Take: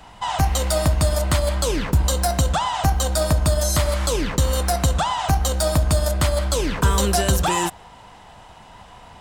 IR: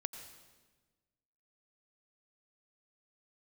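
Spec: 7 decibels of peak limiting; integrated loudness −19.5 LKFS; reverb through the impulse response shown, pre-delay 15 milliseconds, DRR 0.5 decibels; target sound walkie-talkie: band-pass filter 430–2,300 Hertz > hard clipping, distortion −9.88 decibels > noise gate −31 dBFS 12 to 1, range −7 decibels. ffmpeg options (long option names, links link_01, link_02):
-filter_complex "[0:a]alimiter=limit=-15dB:level=0:latency=1,asplit=2[link_01][link_02];[1:a]atrim=start_sample=2205,adelay=15[link_03];[link_02][link_03]afir=irnorm=-1:irlink=0,volume=0.5dB[link_04];[link_01][link_04]amix=inputs=2:normalize=0,highpass=430,lowpass=2300,asoftclip=type=hard:threshold=-25dB,agate=range=-7dB:threshold=-31dB:ratio=12,volume=9.5dB"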